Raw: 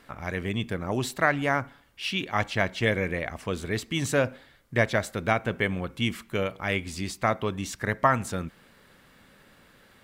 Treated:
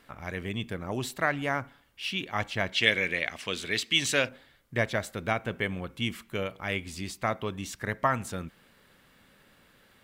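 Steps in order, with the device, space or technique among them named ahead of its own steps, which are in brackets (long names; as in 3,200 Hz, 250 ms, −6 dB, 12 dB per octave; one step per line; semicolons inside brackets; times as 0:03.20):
presence and air boost (parametric band 3,000 Hz +2.5 dB; high-shelf EQ 12,000 Hz +5 dB)
0:02.72–0:04.29: meter weighting curve D
level −4.5 dB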